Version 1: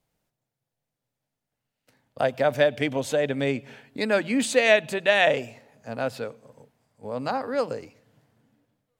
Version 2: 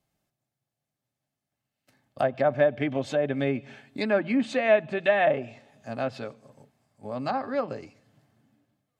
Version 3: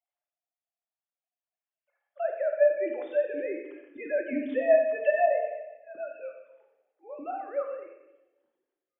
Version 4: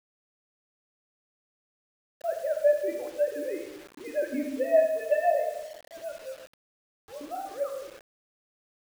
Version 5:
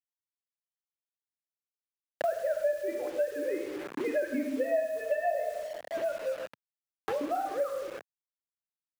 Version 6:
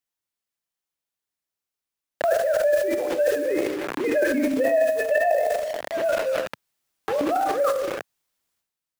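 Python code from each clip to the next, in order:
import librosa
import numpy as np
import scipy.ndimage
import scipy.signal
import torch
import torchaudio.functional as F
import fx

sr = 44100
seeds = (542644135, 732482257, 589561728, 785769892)

y1 = fx.echo_wet_highpass(x, sr, ms=151, feedback_pct=52, hz=5000.0, wet_db=-23.5)
y1 = fx.env_lowpass_down(y1, sr, base_hz=1600.0, full_db=-19.0)
y1 = fx.notch_comb(y1, sr, f0_hz=480.0)
y2 = fx.sine_speech(y1, sr)
y2 = fx.echo_wet_highpass(y2, sr, ms=90, feedback_pct=47, hz=2100.0, wet_db=-7.0)
y2 = fx.room_shoebox(y2, sr, seeds[0], volume_m3=370.0, walls='mixed', distance_m=0.89)
y2 = y2 * 10.0 ** (-3.0 / 20.0)
y3 = fx.high_shelf(y2, sr, hz=2300.0, db=-9.5)
y3 = fx.dispersion(y3, sr, late='highs', ms=62.0, hz=470.0)
y3 = fx.quant_dither(y3, sr, seeds[1], bits=8, dither='none')
y4 = fx.dynamic_eq(y3, sr, hz=1500.0, q=1.5, threshold_db=-44.0, ratio=4.0, max_db=4)
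y4 = fx.band_squash(y4, sr, depth_pct=100)
y4 = y4 * 10.0 ** (-2.5 / 20.0)
y5 = fx.transient(y4, sr, attack_db=-2, sustain_db=11)
y5 = y5 * 10.0 ** (7.5 / 20.0)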